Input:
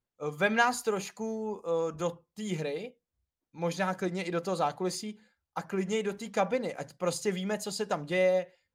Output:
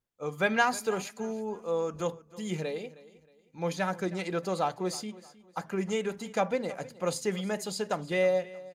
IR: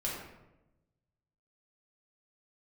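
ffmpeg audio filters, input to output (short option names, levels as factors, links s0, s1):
-af "aecho=1:1:314|628|942:0.112|0.0381|0.013"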